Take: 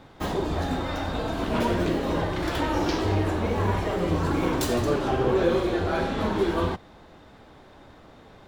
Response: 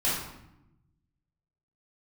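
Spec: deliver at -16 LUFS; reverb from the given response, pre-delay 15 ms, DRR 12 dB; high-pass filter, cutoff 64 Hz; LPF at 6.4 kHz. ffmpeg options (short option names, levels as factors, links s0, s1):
-filter_complex "[0:a]highpass=64,lowpass=6400,asplit=2[s0][s1];[1:a]atrim=start_sample=2205,adelay=15[s2];[s1][s2]afir=irnorm=-1:irlink=0,volume=0.075[s3];[s0][s3]amix=inputs=2:normalize=0,volume=2.99"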